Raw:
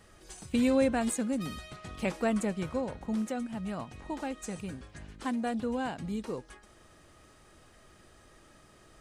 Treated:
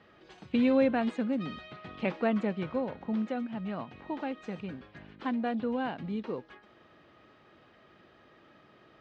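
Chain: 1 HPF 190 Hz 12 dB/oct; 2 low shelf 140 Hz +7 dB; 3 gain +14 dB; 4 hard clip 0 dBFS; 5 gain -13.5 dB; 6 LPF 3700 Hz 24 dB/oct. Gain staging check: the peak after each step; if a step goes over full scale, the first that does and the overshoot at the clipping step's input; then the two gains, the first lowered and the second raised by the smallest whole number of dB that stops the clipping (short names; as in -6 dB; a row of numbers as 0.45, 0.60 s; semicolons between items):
-16.5, -16.0, -2.0, -2.0, -15.5, -15.5 dBFS; no overload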